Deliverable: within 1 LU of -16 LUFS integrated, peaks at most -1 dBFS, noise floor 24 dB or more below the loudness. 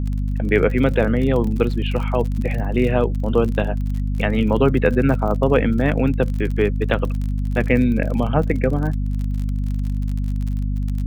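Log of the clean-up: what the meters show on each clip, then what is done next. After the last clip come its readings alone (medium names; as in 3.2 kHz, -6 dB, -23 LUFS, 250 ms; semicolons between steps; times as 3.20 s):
tick rate 41 per s; hum 50 Hz; highest harmonic 250 Hz; hum level -19 dBFS; loudness -20.5 LUFS; peak level -2.5 dBFS; loudness target -16.0 LUFS
-> de-click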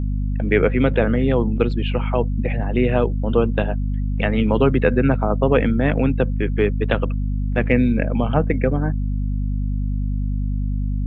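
tick rate 0 per s; hum 50 Hz; highest harmonic 250 Hz; hum level -19 dBFS
-> hum notches 50/100/150/200/250 Hz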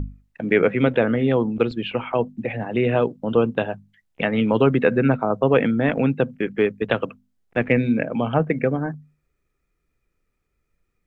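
hum not found; loudness -21.5 LUFS; peak level -3.0 dBFS; loudness target -16.0 LUFS
-> trim +5.5 dB; peak limiter -1 dBFS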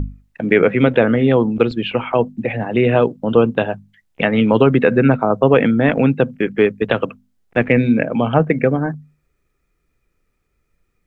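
loudness -16.5 LUFS; peak level -1.0 dBFS; noise floor -69 dBFS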